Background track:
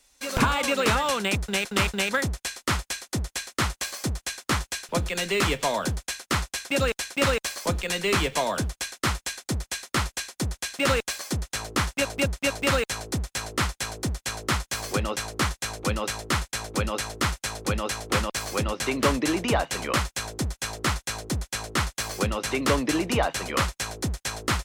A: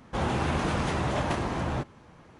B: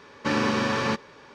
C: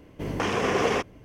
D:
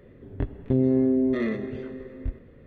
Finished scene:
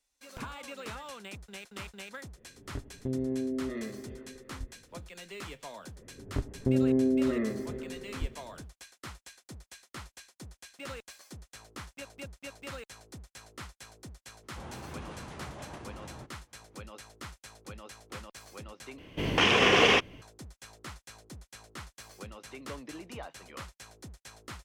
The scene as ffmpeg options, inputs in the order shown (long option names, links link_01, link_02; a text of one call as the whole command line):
ffmpeg -i bed.wav -i cue0.wav -i cue1.wav -i cue2.wav -i cue3.wav -filter_complex "[4:a]asplit=2[link_01][link_02];[0:a]volume=-19dB[link_03];[link_02]lowpass=1900[link_04];[3:a]equalizer=frequency=3000:width=1.2:gain=12.5[link_05];[link_03]asplit=2[link_06][link_07];[link_06]atrim=end=18.984[link_08];[link_05]atrim=end=1.24,asetpts=PTS-STARTPTS,volume=-0.5dB[link_09];[link_07]atrim=start=20.216[link_10];[link_01]atrim=end=2.66,asetpts=PTS-STARTPTS,volume=-11dB,afade=type=in:duration=0.004:curve=hsin,afade=type=out:start_time=2.656:duration=0.004:curve=hsin,adelay=2350[link_11];[link_04]atrim=end=2.66,asetpts=PTS-STARTPTS,volume=-4dB,afade=type=in:duration=0.004:curve=hsin,afade=type=out:start_time=2.656:duration=0.004:curve=hsin,adelay=5960[link_12];[1:a]atrim=end=2.39,asetpts=PTS-STARTPTS,volume=-16.5dB,afade=type=in:duration=0.004:curve=hsin,afade=type=out:start_time=2.386:duration=0.004:curve=hsin,adelay=14430[link_13];[link_08][link_09]acrossfade=duration=0.004:curve1=hsin:curve2=hsin[link_14];[link_14][link_10]acrossfade=duration=0.004:curve1=hsin:curve2=hsin[link_15];[link_15][link_11][link_12][link_13]amix=inputs=4:normalize=0" out.wav